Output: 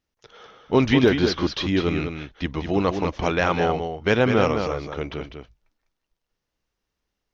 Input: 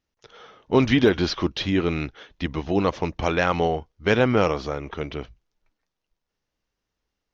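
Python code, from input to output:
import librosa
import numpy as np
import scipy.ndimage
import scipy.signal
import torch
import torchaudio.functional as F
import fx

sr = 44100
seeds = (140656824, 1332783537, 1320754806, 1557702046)

y = x + 10.0 ** (-7.0 / 20.0) * np.pad(x, (int(200 * sr / 1000.0), 0))[:len(x)]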